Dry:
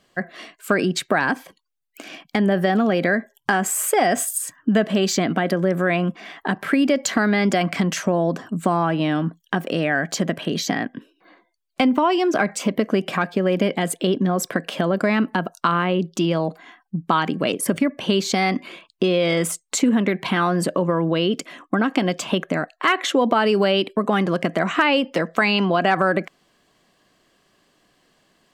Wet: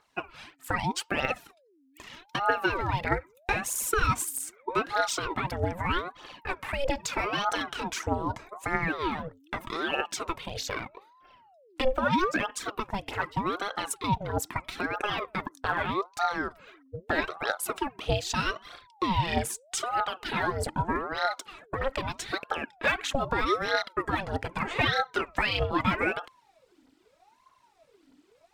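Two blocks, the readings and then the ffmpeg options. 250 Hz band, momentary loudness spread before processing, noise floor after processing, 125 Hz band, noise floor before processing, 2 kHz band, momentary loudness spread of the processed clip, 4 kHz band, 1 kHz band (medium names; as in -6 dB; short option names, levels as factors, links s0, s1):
-15.0 dB, 8 LU, -64 dBFS, -9.0 dB, -68 dBFS, -6.0 dB, 10 LU, -7.5 dB, -5.5 dB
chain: -af "asubboost=boost=11:cutoff=51,aphaser=in_gain=1:out_gain=1:delay=3.2:decay=0.64:speed=1.6:type=triangular,aeval=exprs='val(0)*sin(2*PI*660*n/s+660*0.6/0.8*sin(2*PI*0.8*n/s))':c=same,volume=0.447"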